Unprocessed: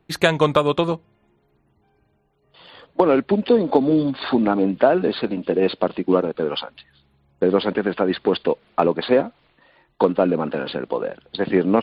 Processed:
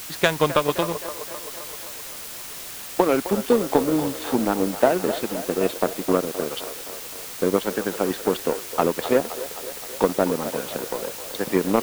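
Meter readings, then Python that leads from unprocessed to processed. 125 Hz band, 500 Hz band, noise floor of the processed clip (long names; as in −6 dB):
−4.5 dB, −3.0 dB, −36 dBFS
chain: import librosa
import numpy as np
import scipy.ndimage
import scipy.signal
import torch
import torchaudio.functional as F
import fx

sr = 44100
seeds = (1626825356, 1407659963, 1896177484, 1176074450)

y = fx.echo_wet_bandpass(x, sr, ms=260, feedback_pct=73, hz=820.0, wet_db=-8)
y = fx.power_curve(y, sr, exponent=1.4)
y = fx.quant_dither(y, sr, seeds[0], bits=6, dither='triangular')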